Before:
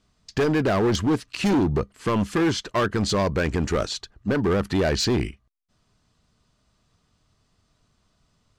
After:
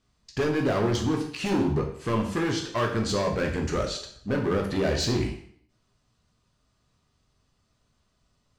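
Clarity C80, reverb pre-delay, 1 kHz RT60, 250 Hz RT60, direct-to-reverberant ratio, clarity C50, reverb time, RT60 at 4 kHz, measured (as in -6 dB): 10.0 dB, 5 ms, 0.60 s, 0.60 s, 0.5 dB, 7.0 dB, 0.60 s, 0.60 s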